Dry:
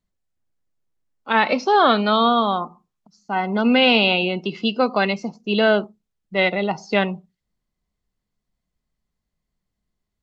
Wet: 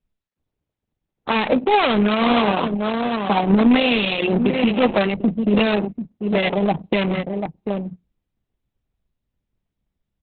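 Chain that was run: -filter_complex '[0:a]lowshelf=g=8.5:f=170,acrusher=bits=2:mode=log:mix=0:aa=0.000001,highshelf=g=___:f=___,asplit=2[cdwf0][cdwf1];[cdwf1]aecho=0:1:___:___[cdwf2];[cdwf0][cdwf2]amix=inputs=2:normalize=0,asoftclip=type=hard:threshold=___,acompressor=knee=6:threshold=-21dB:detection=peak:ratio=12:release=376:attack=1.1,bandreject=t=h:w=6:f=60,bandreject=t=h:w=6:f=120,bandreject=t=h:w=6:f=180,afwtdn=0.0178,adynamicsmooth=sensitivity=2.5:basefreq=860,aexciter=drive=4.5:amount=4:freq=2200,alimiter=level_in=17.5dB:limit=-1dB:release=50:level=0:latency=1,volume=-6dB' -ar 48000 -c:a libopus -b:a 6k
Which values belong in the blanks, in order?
-5, 2200, 740, 0.2, -11.5dB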